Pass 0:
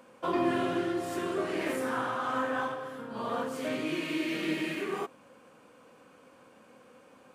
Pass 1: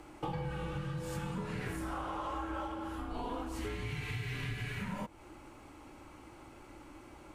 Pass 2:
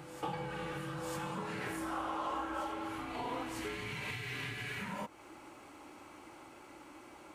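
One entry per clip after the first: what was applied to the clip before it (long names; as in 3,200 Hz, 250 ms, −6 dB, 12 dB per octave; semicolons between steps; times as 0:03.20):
downward compressor 6 to 1, threshold −40 dBFS, peak gain reduction 15.5 dB; frequency shifter −200 Hz; level +4 dB
high-pass filter 350 Hz 6 dB per octave; on a send: backwards echo 949 ms −9.5 dB; on the sum: level +2 dB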